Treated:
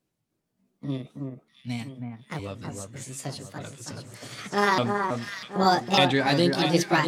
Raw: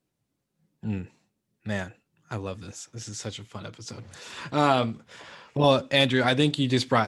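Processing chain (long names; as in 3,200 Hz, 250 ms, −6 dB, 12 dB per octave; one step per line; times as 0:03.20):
pitch shifter swept by a sawtooth +6.5 semitones, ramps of 1,195 ms
gain on a spectral selection 0:01.16–0:02.06, 310–2,200 Hz −11 dB
delay that swaps between a low-pass and a high-pass 323 ms, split 1,700 Hz, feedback 65%, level −4 dB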